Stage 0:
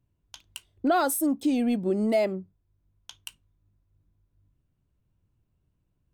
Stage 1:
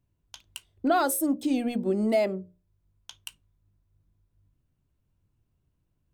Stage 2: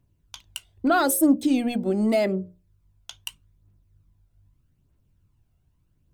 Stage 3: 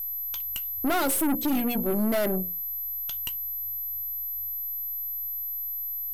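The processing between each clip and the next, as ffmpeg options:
-af "bandreject=f=60:t=h:w=6,bandreject=f=120:t=h:w=6,bandreject=f=180:t=h:w=6,bandreject=f=240:t=h:w=6,bandreject=f=300:t=h:w=6,bandreject=f=360:t=h:w=6,bandreject=f=420:t=h:w=6,bandreject=f=480:t=h:w=6,bandreject=f=540:t=h:w=6,bandreject=f=600:t=h:w=6"
-af "aphaser=in_gain=1:out_gain=1:delay=1.5:decay=0.39:speed=0.81:type=triangular,volume=4dB"
-af "aeval=exprs='val(0)+0.0282*sin(2*PI*12000*n/s)':c=same,aeval=exprs='(tanh(20*val(0)+0.5)-tanh(0.5))/20':c=same,volume=3.5dB"

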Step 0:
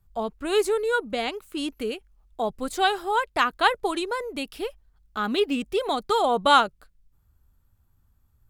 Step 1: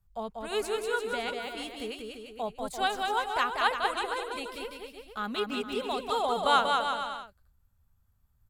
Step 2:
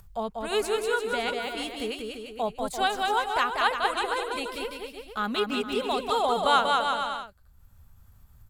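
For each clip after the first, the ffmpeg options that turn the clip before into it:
-filter_complex "[0:a]equalizer=f=330:w=3.7:g=-12.5,asplit=2[a][b];[b]aecho=0:1:190|342|463.6|560.9|638.7:0.631|0.398|0.251|0.158|0.1[c];[a][c]amix=inputs=2:normalize=0,volume=-6.5dB"
-filter_complex "[0:a]asplit=2[a][b];[b]alimiter=limit=-22.5dB:level=0:latency=1:release=403,volume=-2dB[c];[a][c]amix=inputs=2:normalize=0,acompressor=mode=upward:threshold=-42dB:ratio=2.5"

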